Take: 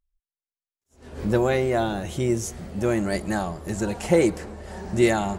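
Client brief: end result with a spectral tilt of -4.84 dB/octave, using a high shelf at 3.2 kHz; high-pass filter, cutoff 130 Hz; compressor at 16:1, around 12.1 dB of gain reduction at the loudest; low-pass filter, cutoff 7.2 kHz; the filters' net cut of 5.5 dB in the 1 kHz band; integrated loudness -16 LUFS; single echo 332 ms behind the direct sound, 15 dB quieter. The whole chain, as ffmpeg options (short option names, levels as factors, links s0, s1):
-af "highpass=130,lowpass=7200,equalizer=f=1000:t=o:g=-9,highshelf=f=3200:g=5,acompressor=threshold=0.0501:ratio=16,aecho=1:1:332:0.178,volume=6.68"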